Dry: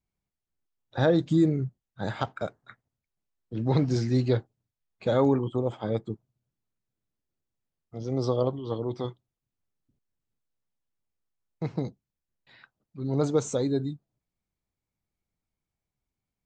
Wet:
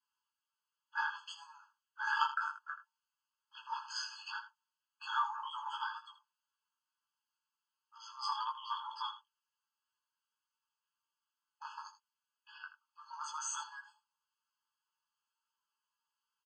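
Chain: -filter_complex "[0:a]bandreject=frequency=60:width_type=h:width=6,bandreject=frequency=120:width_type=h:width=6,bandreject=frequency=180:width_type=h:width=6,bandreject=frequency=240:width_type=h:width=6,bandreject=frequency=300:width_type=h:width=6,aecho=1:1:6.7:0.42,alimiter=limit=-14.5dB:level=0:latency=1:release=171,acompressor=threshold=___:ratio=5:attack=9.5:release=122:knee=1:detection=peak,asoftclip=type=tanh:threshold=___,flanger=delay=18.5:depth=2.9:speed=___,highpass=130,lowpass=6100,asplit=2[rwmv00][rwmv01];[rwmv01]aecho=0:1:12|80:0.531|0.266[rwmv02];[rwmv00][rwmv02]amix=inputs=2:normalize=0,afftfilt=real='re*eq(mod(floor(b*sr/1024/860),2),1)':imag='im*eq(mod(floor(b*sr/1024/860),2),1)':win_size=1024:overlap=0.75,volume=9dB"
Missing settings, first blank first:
-26dB, -17.5dB, 2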